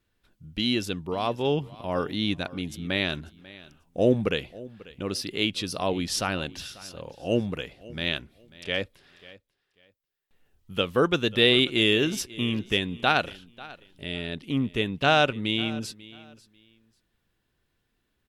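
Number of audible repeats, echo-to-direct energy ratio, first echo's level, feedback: 2, −20.0 dB, −20.0 dB, 22%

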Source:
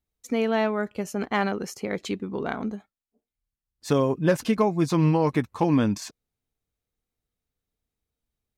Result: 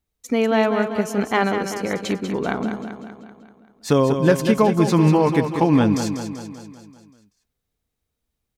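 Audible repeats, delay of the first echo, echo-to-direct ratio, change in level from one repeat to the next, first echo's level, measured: 6, 193 ms, −6.5 dB, −5.0 dB, −8.0 dB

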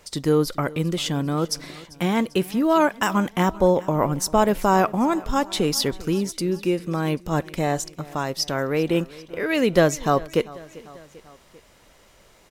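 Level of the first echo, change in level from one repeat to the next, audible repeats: −20.5 dB, −4.5 dB, 3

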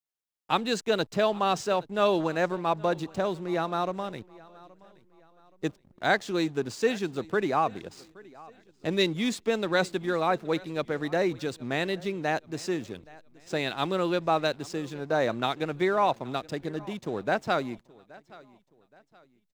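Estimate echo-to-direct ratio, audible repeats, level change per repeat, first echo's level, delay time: −22.0 dB, 2, −8.5 dB, −22.5 dB, 823 ms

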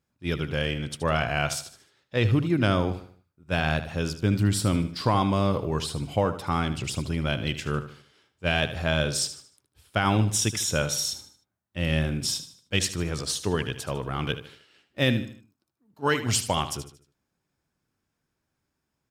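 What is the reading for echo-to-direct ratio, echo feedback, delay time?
−11.5 dB, 38%, 76 ms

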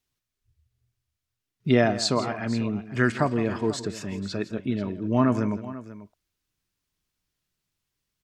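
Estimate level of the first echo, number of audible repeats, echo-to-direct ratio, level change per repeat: −15.0 dB, 2, −12.5 dB, repeats not evenly spaced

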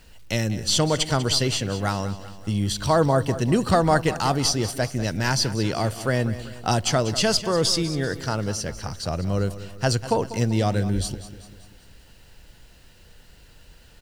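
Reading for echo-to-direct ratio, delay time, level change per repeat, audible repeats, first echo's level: −12.5 dB, 194 ms, −6.0 dB, 4, −14.0 dB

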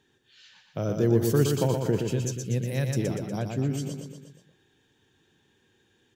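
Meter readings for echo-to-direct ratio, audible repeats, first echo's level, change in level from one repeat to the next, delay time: −3.5 dB, 5, −5.0 dB, −5.0 dB, 120 ms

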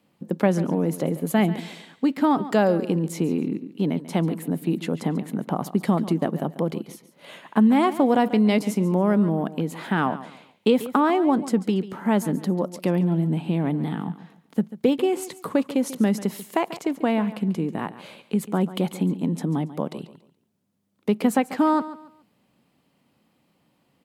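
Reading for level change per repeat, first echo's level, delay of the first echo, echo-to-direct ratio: −11.0 dB, −15.0 dB, 141 ms, −14.5 dB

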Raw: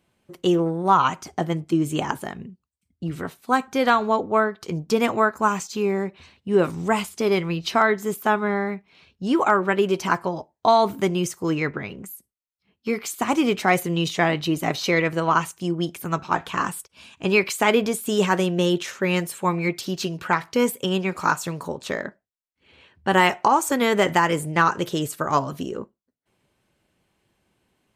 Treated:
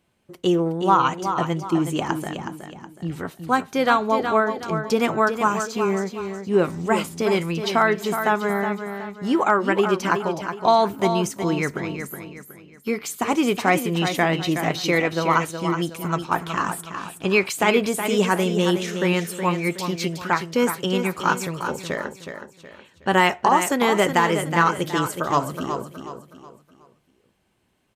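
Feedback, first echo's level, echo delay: 36%, −8.0 dB, 369 ms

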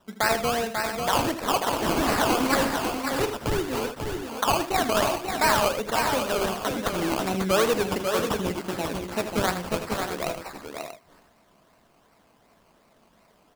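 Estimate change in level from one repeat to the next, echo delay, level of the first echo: repeats not evenly spaced, 79 ms, −10.5 dB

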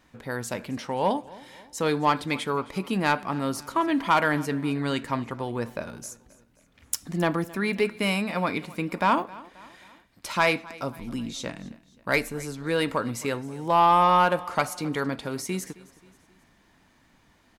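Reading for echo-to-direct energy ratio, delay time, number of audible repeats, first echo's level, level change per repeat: −20.0 dB, 266 ms, 3, −21.0 dB, −6.5 dB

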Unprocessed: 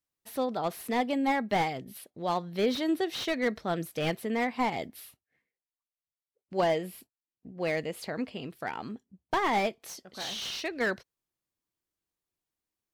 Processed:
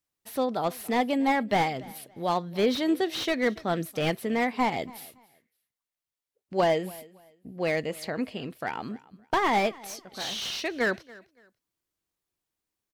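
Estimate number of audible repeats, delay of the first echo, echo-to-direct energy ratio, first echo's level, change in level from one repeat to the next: 2, 283 ms, −21.5 dB, −22.0 dB, −12.0 dB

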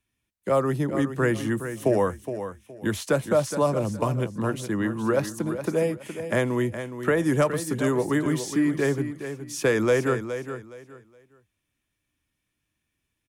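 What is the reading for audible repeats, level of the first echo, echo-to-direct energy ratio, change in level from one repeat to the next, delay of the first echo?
3, −10.0 dB, −9.5 dB, −12.5 dB, 417 ms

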